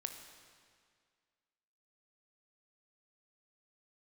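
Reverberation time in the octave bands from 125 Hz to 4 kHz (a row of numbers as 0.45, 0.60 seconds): 1.9, 2.0, 2.0, 2.0, 1.9, 1.8 seconds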